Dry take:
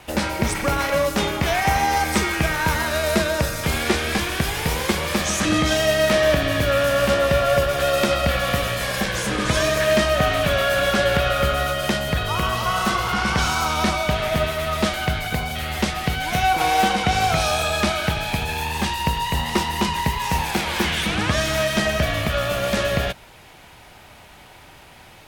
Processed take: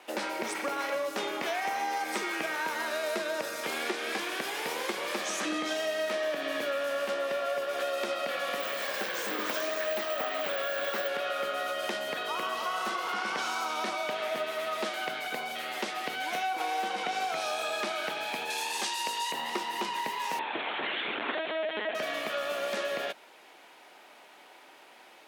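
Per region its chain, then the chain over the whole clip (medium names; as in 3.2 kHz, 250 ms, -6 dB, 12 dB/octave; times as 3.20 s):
8.60–11.08 s: careless resampling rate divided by 2×, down filtered, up zero stuff + loudspeaker Doppler distortion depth 0.47 ms
18.50–19.32 s: low-pass 9.3 kHz + tone controls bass -7 dB, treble +14 dB
20.39–21.95 s: de-hum 397.9 Hz, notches 30 + LPC vocoder at 8 kHz pitch kept
whole clip: high-pass 290 Hz 24 dB/octave; treble shelf 5.6 kHz -5.5 dB; compression, threshold -22 dBFS; trim -6.5 dB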